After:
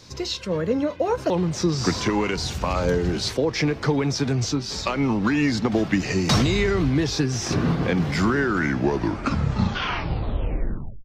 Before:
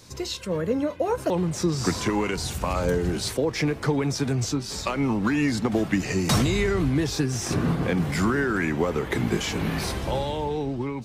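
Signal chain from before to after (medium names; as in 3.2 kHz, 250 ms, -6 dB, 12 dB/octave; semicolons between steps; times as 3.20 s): tape stop on the ending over 2.64 s; resonant high shelf 7.2 kHz -9.5 dB, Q 1.5; trim +2 dB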